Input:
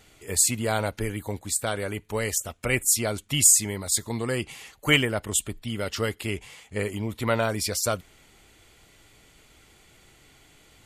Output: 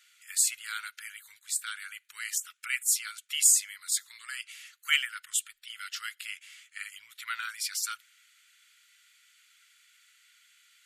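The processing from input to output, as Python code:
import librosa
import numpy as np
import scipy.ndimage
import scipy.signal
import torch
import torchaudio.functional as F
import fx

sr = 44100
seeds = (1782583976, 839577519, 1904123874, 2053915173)

y = scipy.signal.sosfilt(scipy.signal.ellip(4, 1.0, 50, 1400.0, 'highpass', fs=sr, output='sos'), x)
y = y * librosa.db_to_amplitude(-3.5)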